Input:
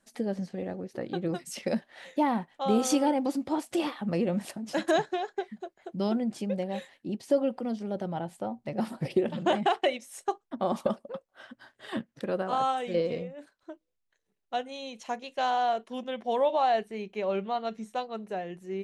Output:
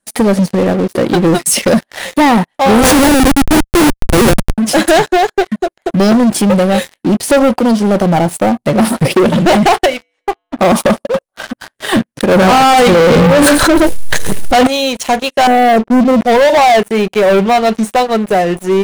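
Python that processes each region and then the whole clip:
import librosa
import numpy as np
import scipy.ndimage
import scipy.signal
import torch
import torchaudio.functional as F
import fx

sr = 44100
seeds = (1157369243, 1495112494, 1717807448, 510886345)

y = fx.chain(x, sr, fx.steep_highpass(hz=220.0, slope=96),
    fx.schmitt(flips_db=-29.5), at=(2.83, 4.58))
y = fx.chain(y, sr, fx.lowpass(hz=3500.0, slope=24),
    fx.comb_fb(f0_hz=98.0, decay_s=0.85, harmonics='odd', damping=0.0, mix_pct=70), at=(9.86, 10.59))
y = fx.chain(y, sr, fx.low_shelf(hz=140.0, db=10.5),
    fx.echo_single(ms=121, db=-19.0),
    fx.env_flatten(amount_pct=100), at=(12.31, 14.67))
y = fx.chain(y, sr, fx.steep_lowpass(hz=680.0, slope=36),
    fx.peak_eq(hz=220.0, db=12.0, octaves=1.8), at=(15.47, 16.21))
y = fx.peak_eq(y, sr, hz=10000.0, db=12.0, octaves=0.44)
y = fx.leveller(y, sr, passes=5)
y = F.gain(torch.from_numpy(y), 7.5).numpy()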